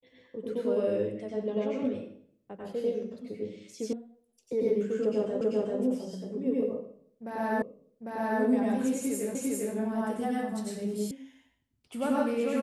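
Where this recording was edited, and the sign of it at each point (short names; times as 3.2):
3.93 sound cut off
5.41 repeat of the last 0.39 s
7.62 repeat of the last 0.8 s
9.35 repeat of the last 0.4 s
11.11 sound cut off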